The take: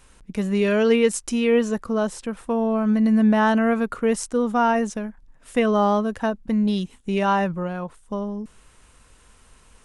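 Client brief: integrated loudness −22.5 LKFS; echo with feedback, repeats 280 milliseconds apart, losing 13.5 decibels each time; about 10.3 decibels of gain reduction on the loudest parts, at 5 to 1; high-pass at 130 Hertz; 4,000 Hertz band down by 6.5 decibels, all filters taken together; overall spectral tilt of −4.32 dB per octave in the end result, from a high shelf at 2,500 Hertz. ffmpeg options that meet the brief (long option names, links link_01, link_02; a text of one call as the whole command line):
ffmpeg -i in.wav -af "highpass=130,highshelf=frequency=2500:gain=-3,equalizer=frequency=4000:width_type=o:gain=-7.5,acompressor=threshold=-26dB:ratio=5,aecho=1:1:280|560:0.211|0.0444,volume=7.5dB" out.wav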